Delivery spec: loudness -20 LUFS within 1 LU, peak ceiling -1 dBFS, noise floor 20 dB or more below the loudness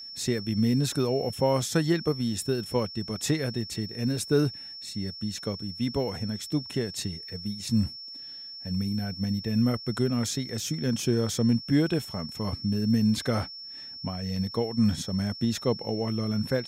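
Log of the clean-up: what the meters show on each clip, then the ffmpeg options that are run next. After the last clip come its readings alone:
steady tone 5400 Hz; tone level -39 dBFS; loudness -28.5 LUFS; peak -11.5 dBFS; loudness target -20.0 LUFS
-> -af "bandreject=f=5.4k:w=30"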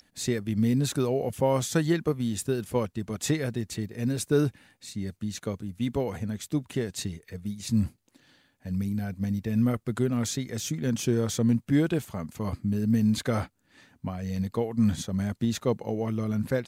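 steady tone none; loudness -28.5 LUFS; peak -12.0 dBFS; loudness target -20.0 LUFS
-> -af "volume=8.5dB"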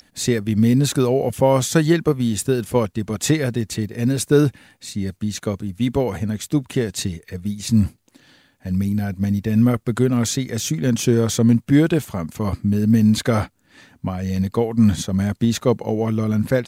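loudness -20.0 LUFS; peak -3.5 dBFS; noise floor -59 dBFS

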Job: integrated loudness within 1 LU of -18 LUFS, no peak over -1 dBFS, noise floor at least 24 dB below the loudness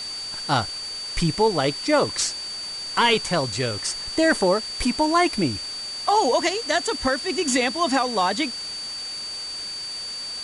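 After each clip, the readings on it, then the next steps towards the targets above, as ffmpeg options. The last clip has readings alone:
steady tone 4600 Hz; tone level -30 dBFS; noise floor -33 dBFS; noise floor target -47 dBFS; loudness -23.0 LUFS; peak -8.0 dBFS; loudness target -18.0 LUFS
-> -af "bandreject=f=4.6k:w=30"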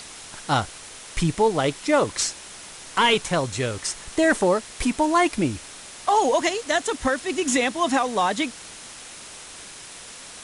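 steady tone none; noise floor -41 dBFS; noise floor target -47 dBFS
-> -af "afftdn=nr=6:nf=-41"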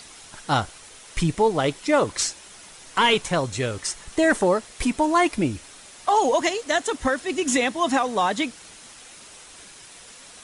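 noise floor -46 dBFS; noise floor target -47 dBFS
-> -af "afftdn=nr=6:nf=-46"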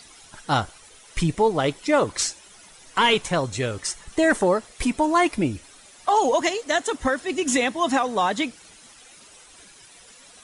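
noise floor -50 dBFS; loudness -23.0 LUFS; peak -9.0 dBFS; loudness target -18.0 LUFS
-> -af "volume=5dB"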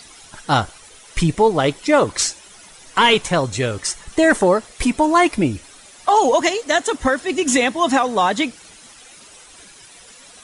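loudness -18.0 LUFS; peak -4.0 dBFS; noise floor -45 dBFS

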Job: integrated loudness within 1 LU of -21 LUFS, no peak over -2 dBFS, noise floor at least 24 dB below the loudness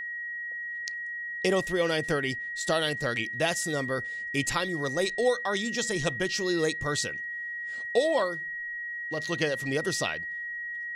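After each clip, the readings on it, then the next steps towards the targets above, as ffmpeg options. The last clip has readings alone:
steady tone 1900 Hz; tone level -33 dBFS; loudness -29.0 LUFS; peak -12.5 dBFS; loudness target -21.0 LUFS
-> -af "bandreject=f=1.9k:w=30"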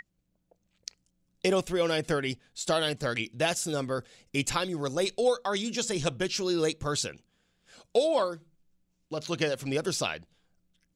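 steady tone none; loudness -29.5 LUFS; peak -12.5 dBFS; loudness target -21.0 LUFS
-> -af "volume=8.5dB"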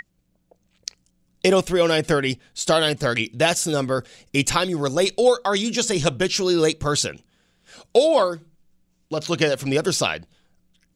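loudness -21.0 LUFS; peak -4.0 dBFS; noise floor -67 dBFS

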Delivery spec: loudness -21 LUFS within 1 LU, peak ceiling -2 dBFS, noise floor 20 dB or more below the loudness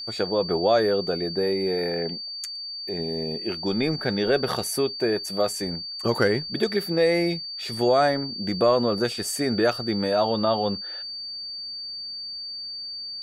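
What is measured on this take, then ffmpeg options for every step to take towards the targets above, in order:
steady tone 4600 Hz; tone level -32 dBFS; loudness -25.0 LUFS; peak -8.0 dBFS; loudness target -21.0 LUFS
-> -af "bandreject=f=4.6k:w=30"
-af "volume=4dB"

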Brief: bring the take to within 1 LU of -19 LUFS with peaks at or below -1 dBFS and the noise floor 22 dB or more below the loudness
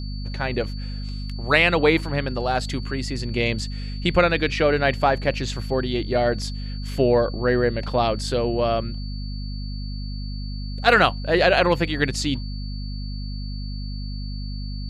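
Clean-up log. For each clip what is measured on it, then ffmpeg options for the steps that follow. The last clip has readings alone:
hum 50 Hz; harmonics up to 250 Hz; hum level -27 dBFS; steady tone 4500 Hz; tone level -41 dBFS; loudness -23.0 LUFS; peak -1.0 dBFS; loudness target -19.0 LUFS
-> -af "bandreject=f=50:t=h:w=6,bandreject=f=100:t=h:w=6,bandreject=f=150:t=h:w=6,bandreject=f=200:t=h:w=6,bandreject=f=250:t=h:w=6"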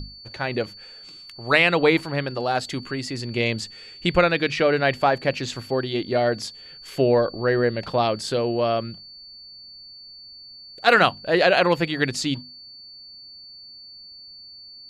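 hum none; steady tone 4500 Hz; tone level -41 dBFS
-> -af "bandreject=f=4.5k:w=30"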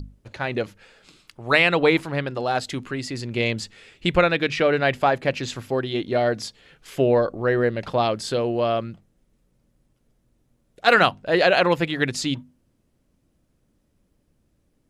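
steady tone none; loudness -22.0 LUFS; peak -1.5 dBFS; loudness target -19.0 LUFS
-> -af "volume=3dB,alimiter=limit=-1dB:level=0:latency=1"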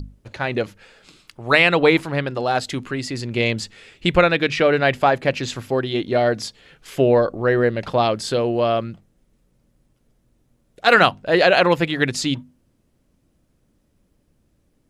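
loudness -19.0 LUFS; peak -1.0 dBFS; noise floor -65 dBFS

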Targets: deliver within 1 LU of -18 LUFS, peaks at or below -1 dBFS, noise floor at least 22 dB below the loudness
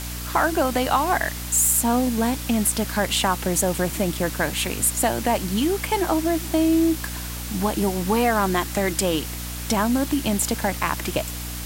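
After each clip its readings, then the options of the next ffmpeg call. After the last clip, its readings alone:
hum 60 Hz; harmonics up to 300 Hz; hum level -31 dBFS; noise floor -31 dBFS; noise floor target -44 dBFS; loudness -22.0 LUFS; peak -6.5 dBFS; loudness target -18.0 LUFS
-> -af "bandreject=f=60:t=h:w=4,bandreject=f=120:t=h:w=4,bandreject=f=180:t=h:w=4,bandreject=f=240:t=h:w=4,bandreject=f=300:t=h:w=4"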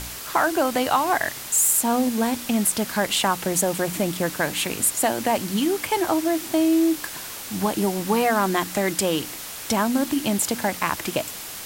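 hum none; noise floor -35 dBFS; noise floor target -45 dBFS
-> -af "afftdn=nr=10:nf=-35"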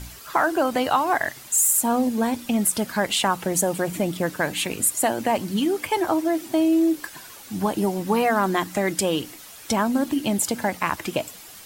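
noise floor -43 dBFS; noise floor target -45 dBFS
-> -af "afftdn=nr=6:nf=-43"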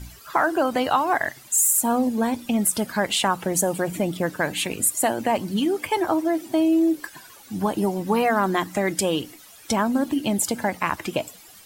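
noise floor -47 dBFS; loudness -22.5 LUFS; peak -7.0 dBFS; loudness target -18.0 LUFS
-> -af "volume=4.5dB"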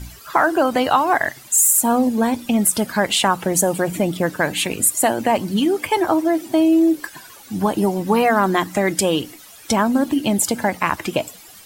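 loudness -18.0 LUFS; peak -2.5 dBFS; noise floor -43 dBFS

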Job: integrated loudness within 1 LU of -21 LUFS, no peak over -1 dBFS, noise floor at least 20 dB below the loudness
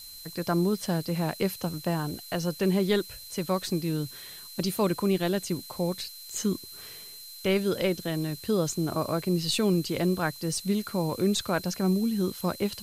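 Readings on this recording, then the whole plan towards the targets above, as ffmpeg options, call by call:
steady tone 4100 Hz; tone level -45 dBFS; noise floor -45 dBFS; noise floor target -49 dBFS; loudness -28.5 LUFS; peak -13.5 dBFS; loudness target -21.0 LUFS
-> -af "bandreject=f=4.1k:w=30"
-af "afftdn=nr=6:nf=-45"
-af "volume=7.5dB"

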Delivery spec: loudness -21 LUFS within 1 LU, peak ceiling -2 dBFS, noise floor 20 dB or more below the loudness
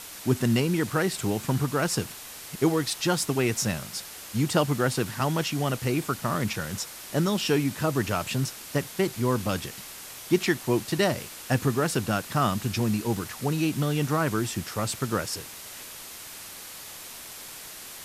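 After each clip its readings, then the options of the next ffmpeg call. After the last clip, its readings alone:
noise floor -42 dBFS; noise floor target -47 dBFS; loudness -27.0 LUFS; peak -9.0 dBFS; loudness target -21.0 LUFS
-> -af "afftdn=nr=6:nf=-42"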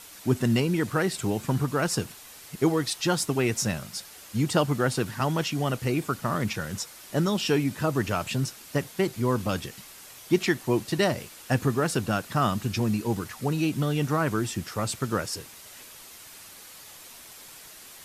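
noise floor -47 dBFS; loudness -27.0 LUFS; peak -9.0 dBFS; loudness target -21.0 LUFS
-> -af "volume=6dB"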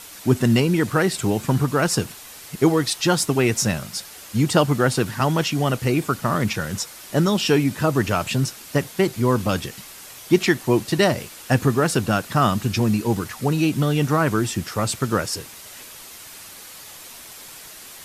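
loudness -21.0 LUFS; peak -3.0 dBFS; noise floor -41 dBFS

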